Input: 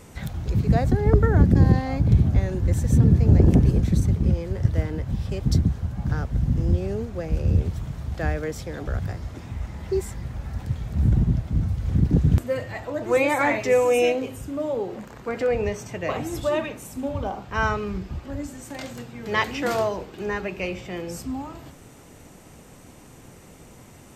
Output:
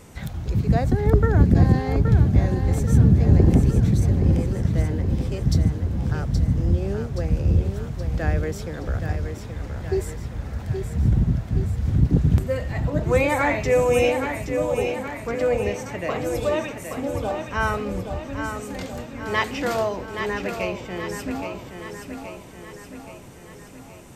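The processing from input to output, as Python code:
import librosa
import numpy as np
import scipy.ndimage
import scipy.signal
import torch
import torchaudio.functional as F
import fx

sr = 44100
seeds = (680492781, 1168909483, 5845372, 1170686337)

y = fx.echo_feedback(x, sr, ms=823, feedback_pct=55, wet_db=-7)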